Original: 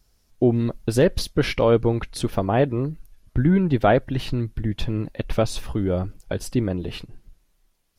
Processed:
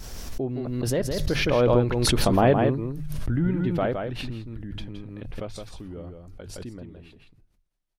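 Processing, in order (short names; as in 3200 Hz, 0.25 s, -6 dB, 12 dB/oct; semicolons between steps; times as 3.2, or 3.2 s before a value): Doppler pass-by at 2.32, 20 m/s, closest 11 m; high shelf 6500 Hz -4.5 dB; notches 50/100/150 Hz; on a send: echo 0.165 s -5.5 dB; on the sum: backwards sustainer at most 26 dB/s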